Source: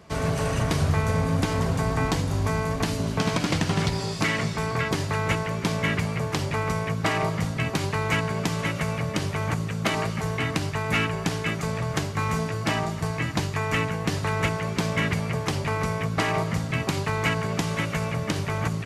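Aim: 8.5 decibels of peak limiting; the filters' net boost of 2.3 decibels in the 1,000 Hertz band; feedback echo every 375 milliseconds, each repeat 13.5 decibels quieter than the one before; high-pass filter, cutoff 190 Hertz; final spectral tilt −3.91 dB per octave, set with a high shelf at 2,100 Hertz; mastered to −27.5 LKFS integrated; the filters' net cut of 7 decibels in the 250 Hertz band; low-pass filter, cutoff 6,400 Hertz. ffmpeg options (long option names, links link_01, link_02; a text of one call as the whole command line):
ffmpeg -i in.wav -af "highpass=190,lowpass=6400,equalizer=frequency=250:width_type=o:gain=-7,equalizer=frequency=1000:width_type=o:gain=4.5,highshelf=frequency=2100:gain=-6,alimiter=limit=-20.5dB:level=0:latency=1,aecho=1:1:375|750:0.211|0.0444,volume=3dB" out.wav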